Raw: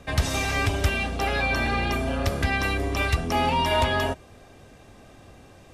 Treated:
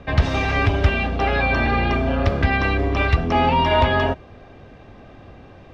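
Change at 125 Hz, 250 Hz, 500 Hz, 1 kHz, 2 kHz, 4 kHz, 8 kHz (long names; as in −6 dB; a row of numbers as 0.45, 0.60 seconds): +6.5 dB, +6.0 dB, +6.0 dB, +5.5 dB, +4.0 dB, +1.0 dB, below −10 dB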